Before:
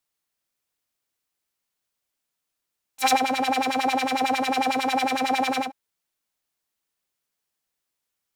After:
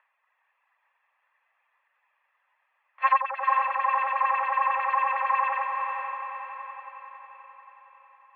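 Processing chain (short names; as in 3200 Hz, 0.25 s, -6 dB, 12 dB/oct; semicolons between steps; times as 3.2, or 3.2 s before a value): minimum comb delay 1.3 ms; reverb removal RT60 1.5 s; upward compressor, threshold -43 dBFS; on a send: diffused feedback echo 0.471 s, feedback 53%, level -4.5 dB; on the sum: mistuned SSB +280 Hz 320–2100 Hz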